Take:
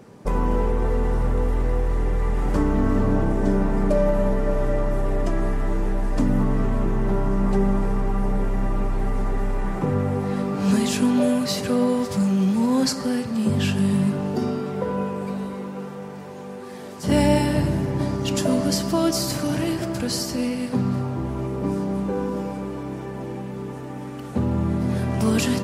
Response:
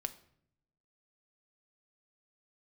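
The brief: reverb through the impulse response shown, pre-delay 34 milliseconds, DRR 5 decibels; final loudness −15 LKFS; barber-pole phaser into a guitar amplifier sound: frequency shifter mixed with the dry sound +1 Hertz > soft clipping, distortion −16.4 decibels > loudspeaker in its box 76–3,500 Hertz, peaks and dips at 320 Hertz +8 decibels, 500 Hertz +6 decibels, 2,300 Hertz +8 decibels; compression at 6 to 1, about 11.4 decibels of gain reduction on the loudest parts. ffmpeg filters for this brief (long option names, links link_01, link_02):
-filter_complex "[0:a]acompressor=threshold=-28dB:ratio=6,asplit=2[link_01][link_02];[1:a]atrim=start_sample=2205,adelay=34[link_03];[link_02][link_03]afir=irnorm=-1:irlink=0,volume=-4dB[link_04];[link_01][link_04]amix=inputs=2:normalize=0,asplit=2[link_05][link_06];[link_06]afreqshift=1[link_07];[link_05][link_07]amix=inputs=2:normalize=1,asoftclip=threshold=-27.5dB,highpass=76,equalizer=frequency=320:width_type=q:width=4:gain=8,equalizer=frequency=500:width_type=q:width=4:gain=6,equalizer=frequency=2300:width_type=q:width=4:gain=8,lowpass=frequency=3500:width=0.5412,lowpass=frequency=3500:width=1.3066,volume=18.5dB"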